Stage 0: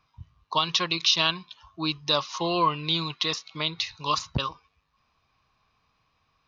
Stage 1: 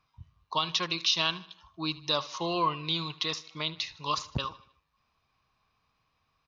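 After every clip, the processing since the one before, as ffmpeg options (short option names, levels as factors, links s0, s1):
-af "aecho=1:1:77|154|231|308:0.112|0.0516|0.0237|0.0109,volume=0.596"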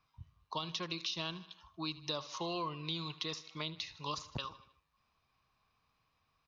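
-filter_complex "[0:a]acrossover=split=580|4700[s0][s1][s2];[s0]acompressor=threshold=0.0141:ratio=4[s3];[s1]acompressor=threshold=0.0126:ratio=4[s4];[s2]acompressor=threshold=0.00708:ratio=4[s5];[s3][s4][s5]amix=inputs=3:normalize=0,volume=0.708"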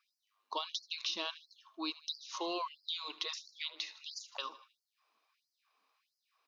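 -af "afftfilt=real='re*gte(b*sr/1024,210*pow(4300/210,0.5+0.5*sin(2*PI*1.5*pts/sr)))':imag='im*gte(b*sr/1024,210*pow(4300/210,0.5+0.5*sin(2*PI*1.5*pts/sr)))':win_size=1024:overlap=0.75,volume=1.19"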